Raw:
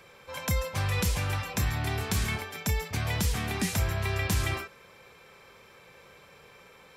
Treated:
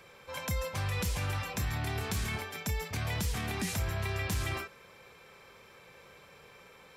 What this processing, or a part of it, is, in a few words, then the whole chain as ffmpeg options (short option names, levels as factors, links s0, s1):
clipper into limiter: -af "asoftclip=type=hard:threshold=0.1,alimiter=limit=0.0631:level=0:latency=1:release=32,volume=0.841"